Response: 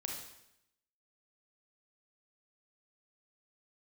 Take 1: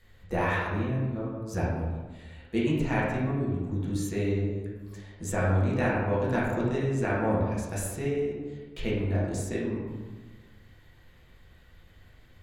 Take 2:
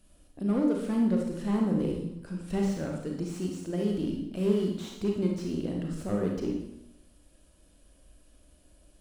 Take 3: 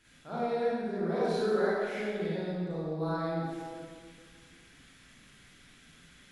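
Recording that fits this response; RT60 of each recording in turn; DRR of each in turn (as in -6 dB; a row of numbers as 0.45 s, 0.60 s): 2; 1.3 s, 0.80 s, 1.9 s; -7.0 dB, 0.0 dB, -10.0 dB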